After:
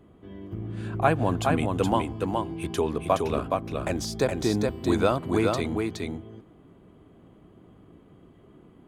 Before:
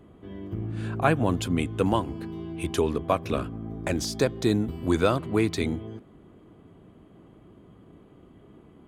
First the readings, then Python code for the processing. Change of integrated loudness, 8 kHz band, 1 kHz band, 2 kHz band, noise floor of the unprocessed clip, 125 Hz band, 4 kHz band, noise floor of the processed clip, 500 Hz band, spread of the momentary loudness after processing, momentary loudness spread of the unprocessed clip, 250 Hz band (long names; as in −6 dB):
+0.5 dB, −1.0 dB, +3.0 dB, 0.0 dB, −53 dBFS, −0.5 dB, −1.0 dB, −55 dBFS, +1.0 dB, 11 LU, 12 LU, −0.5 dB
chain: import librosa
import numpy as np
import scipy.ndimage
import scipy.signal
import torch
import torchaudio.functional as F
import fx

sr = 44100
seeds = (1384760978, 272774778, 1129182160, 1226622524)

p1 = fx.dynamic_eq(x, sr, hz=780.0, q=1.3, threshold_db=-39.0, ratio=4.0, max_db=5)
p2 = p1 + fx.echo_single(p1, sr, ms=419, db=-3.5, dry=0)
y = F.gain(torch.from_numpy(p2), -2.5).numpy()